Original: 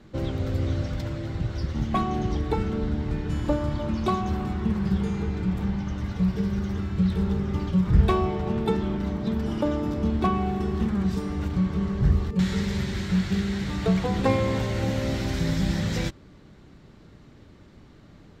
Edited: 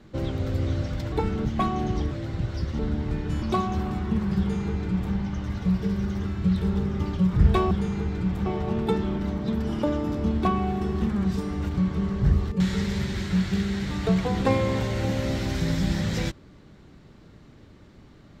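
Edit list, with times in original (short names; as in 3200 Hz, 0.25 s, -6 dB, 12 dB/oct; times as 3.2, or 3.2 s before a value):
1.12–1.8 swap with 2.46–2.79
3.42–3.96 cut
4.93–5.68 copy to 8.25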